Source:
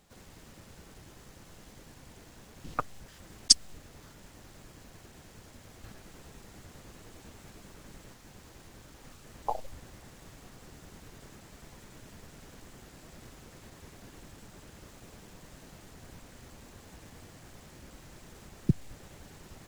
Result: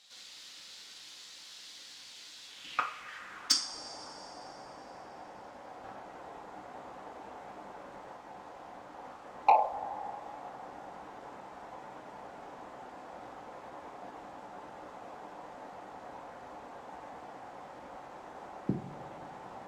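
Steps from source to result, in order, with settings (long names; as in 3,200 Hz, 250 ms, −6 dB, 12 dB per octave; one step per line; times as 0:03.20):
band-pass filter sweep 4,100 Hz → 800 Hz, 0:02.41–0:03.85
coupled-rooms reverb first 0.4 s, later 3.6 s, from −18 dB, DRR 2 dB
soft clipping −28 dBFS, distortion −13 dB
level +13.5 dB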